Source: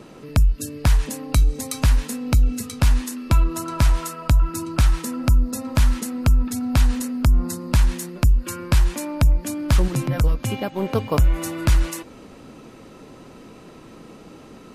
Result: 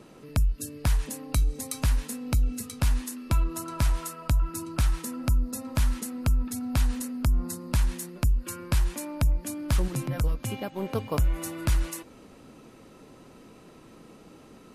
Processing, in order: bell 11000 Hz +5 dB 0.77 oct; gain -7.5 dB

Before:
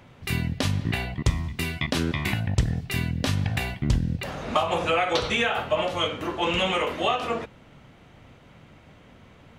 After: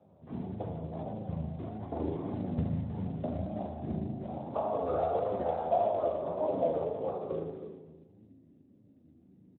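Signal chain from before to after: tracing distortion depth 0.18 ms; LPF 1900 Hz 12 dB/oct; whisperiser; 0.7–1.29 negative-ratio compressor -32 dBFS, ratio -0.5; spring tank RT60 1.5 s, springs 37 ms, chirp 40 ms, DRR 1 dB; 5.13–5.88 buzz 400 Hz, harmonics 18, -36 dBFS 0 dB/oct; resonator 480 Hz, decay 0.67 s, mix 30%; feedback echo 0.32 s, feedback 18%, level -10 dB; flange 0.4 Hz, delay 0.7 ms, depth 1.1 ms, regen +65%; low-pass sweep 660 Hz -> 270 Hz, 6.45–8.32; flange 1.7 Hz, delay 9.3 ms, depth 3.9 ms, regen +51%; Speex 11 kbps 8000 Hz

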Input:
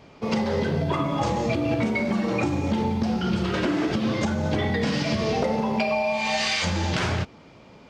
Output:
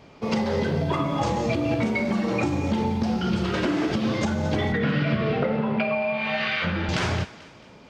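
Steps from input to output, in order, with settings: 4.72–6.89 speaker cabinet 100–3200 Hz, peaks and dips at 140 Hz +8 dB, 860 Hz -8 dB, 1400 Hz +9 dB; on a send: thinning echo 0.22 s, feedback 49%, high-pass 790 Hz, level -16.5 dB

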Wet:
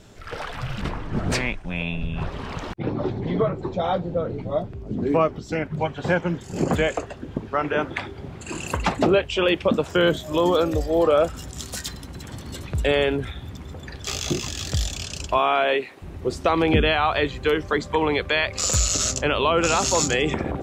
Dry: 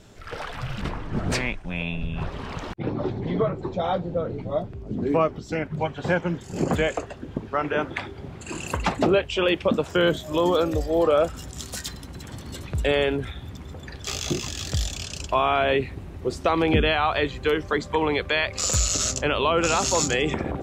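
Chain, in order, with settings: 15.37–16.01 HPF 200 Hz -> 560 Hz 12 dB/oct; gain +1.5 dB

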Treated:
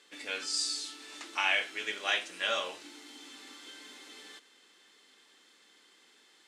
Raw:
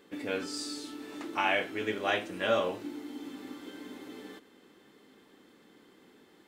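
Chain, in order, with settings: weighting filter ITU-R 468; gain -4 dB

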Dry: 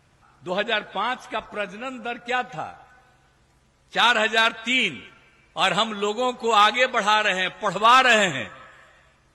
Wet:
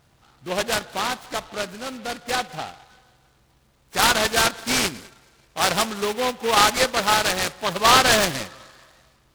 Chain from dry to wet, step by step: noise-modulated delay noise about 2200 Hz, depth 0.094 ms

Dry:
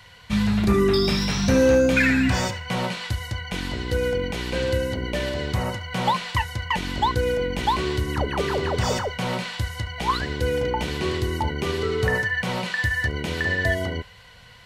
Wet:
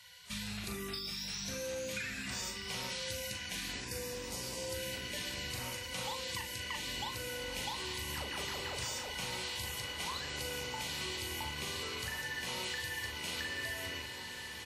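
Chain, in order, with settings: rattling part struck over -31 dBFS, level -27 dBFS; pre-emphasis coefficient 0.97; spectral delete 3.8–4.74, 1200–4500 Hz; low shelf 460 Hz +10 dB; compressor 12:1, threshold -38 dBFS, peak gain reduction 12 dB; doubler 40 ms -5 dB; on a send: diffused feedback echo 1.688 s, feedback 56%, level -6 dB; on the sum: WMA 32 kbps 48000 Hz

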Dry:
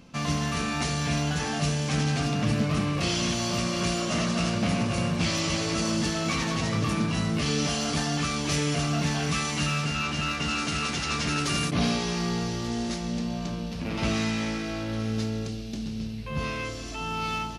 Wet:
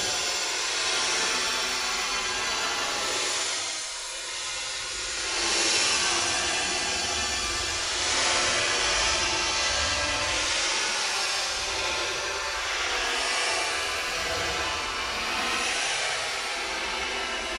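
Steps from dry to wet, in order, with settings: spectral gate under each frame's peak -20 dB weak; outdoor echo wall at 96 m, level -13 dB; Paulstretch 9×, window 0.10 s, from 1.01; gain +9 dB

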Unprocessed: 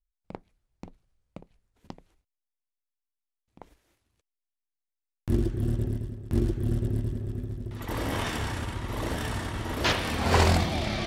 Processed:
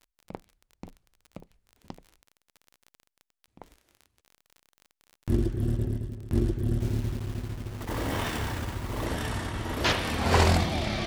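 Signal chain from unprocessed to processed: 6.8–9.06 level-crossing sampler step -37.5 dBFS; crackle 31/s -38 dBFS

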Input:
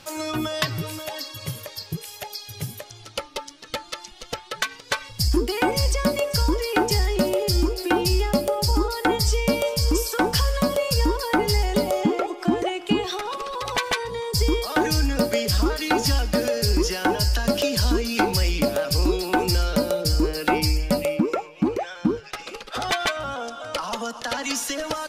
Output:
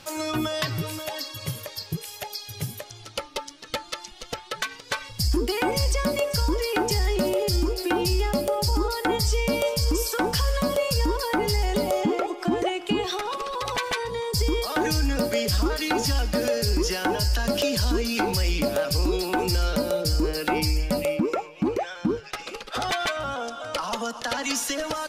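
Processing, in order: limiter -14.5 dBFS, peak gain reduction 5 dB

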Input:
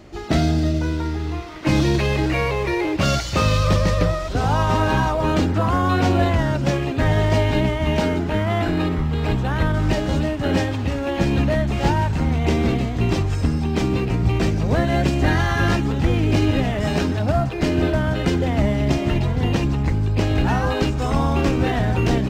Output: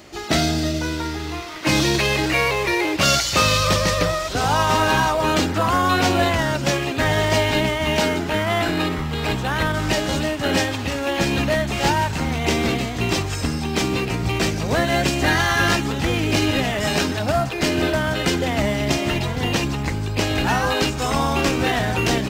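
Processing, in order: tilt +2.5 dB/oct; gain +3 dB

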